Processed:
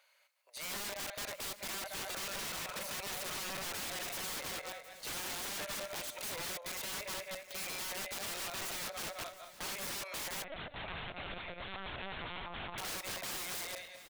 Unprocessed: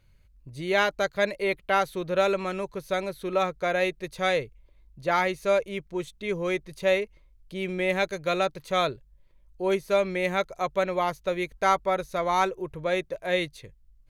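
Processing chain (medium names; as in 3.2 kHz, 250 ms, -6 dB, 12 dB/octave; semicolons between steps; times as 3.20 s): backward echo that repeats 105 ms, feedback 55%, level -12 dB; steep high-pass 570 Hz 48 dB/octave; compression 8:1, threshold -35 dBFS, peak gain reduction 17.5 dB; peak limiter -30 dBFS, peak gain reduction 7.5 dB; gain riding within 5 dB 2 s; integer overflow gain 41 dB; delay 715 ms -16.5 dB; 10.44–12.78 s: LPC vocoder at 8 kHz pitch kept; trim +5.5 dB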